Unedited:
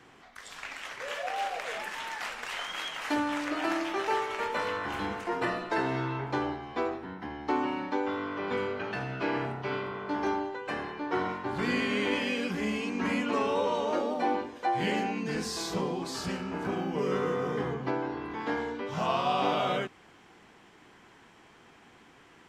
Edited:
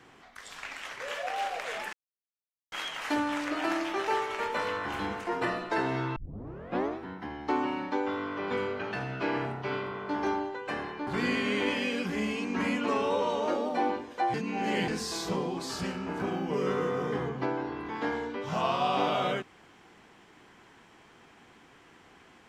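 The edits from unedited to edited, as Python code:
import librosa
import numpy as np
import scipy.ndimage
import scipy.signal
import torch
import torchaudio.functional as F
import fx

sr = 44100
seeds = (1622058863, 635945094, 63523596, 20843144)

y = fx.edit(x, sr, fx.silence(start_s=1.93, length_s=0.79),
    fx.tape_start(start_s=6.16, length_s=0.82),
    fx.cut(start_s=11.07, length_s=0.45),
    fx.reverse_span(start_s=14.79, length_s=0.54), tone=tone)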